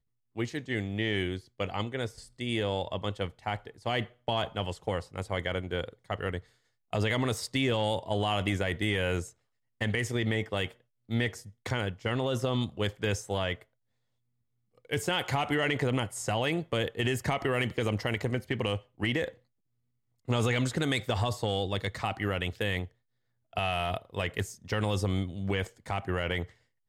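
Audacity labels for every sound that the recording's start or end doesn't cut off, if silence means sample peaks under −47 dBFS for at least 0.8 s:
14.850000	19.320000	sound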